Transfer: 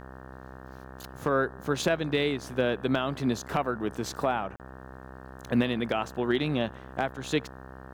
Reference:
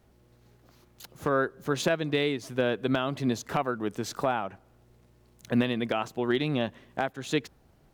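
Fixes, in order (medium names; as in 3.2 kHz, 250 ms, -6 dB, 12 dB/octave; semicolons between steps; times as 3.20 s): de-hum 65 Hz, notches 28; interpolate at 4.56 s, 38 ms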